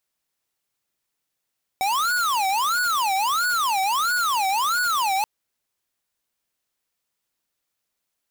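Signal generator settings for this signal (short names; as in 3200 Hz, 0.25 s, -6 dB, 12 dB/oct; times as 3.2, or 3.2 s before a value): siren wail 761–1470 Hz 1.5/s square -22 dBFS 3.43 s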